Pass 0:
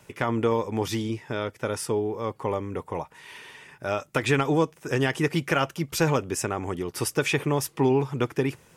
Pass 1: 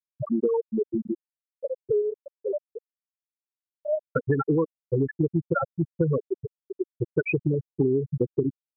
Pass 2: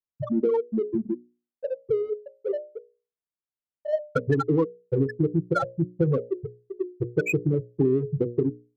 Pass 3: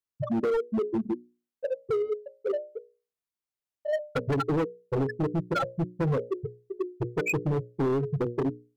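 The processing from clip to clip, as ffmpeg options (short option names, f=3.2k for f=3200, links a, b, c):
-af "afftfilt=real='re*gte(hypot(re,im),0.355)':imag='im*gte(hypot(re,im),0.355)':win_size=1024:overlap=0.75,acompressor=threshold=-27dB:ratio=6,volume=7dB"
-af "adynamicsmooth=sensitivity=6:basefreq=1.6k,bandreject=f=60:t=h:w=6,bandreject=f=120:t=h:w=6,bandreject=f=180:t=h:w=6,bandreject=f=240:t=h:w=6,bandreject=f=300:t=h:w=6,bandreject=f=360:t=h:w=6,bandreject=f=420:t=h:w=6,bandreject=f=480:t=h:w=6,bandreject=f=540:t=h:w=6,bandreject=f=600:t=h:w=6,volume=1.5dB"
-af "asoftclip=type=hard:threshold=-23dB"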